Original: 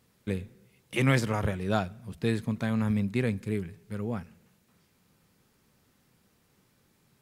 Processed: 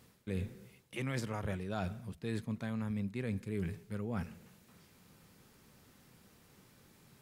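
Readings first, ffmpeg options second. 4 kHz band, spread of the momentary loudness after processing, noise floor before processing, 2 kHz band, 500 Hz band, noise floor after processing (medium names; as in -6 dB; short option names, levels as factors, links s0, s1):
-10.5 dB, 7 LU, -68 dBFS, -11.0 dB, -9.5 dB, -65 dBFS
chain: -af "alimiter=limit=0.188:level=0:latency=1:release=441,areverse,acompressor=threshold=0.0126:ratio=12,areverse,volume=1.68"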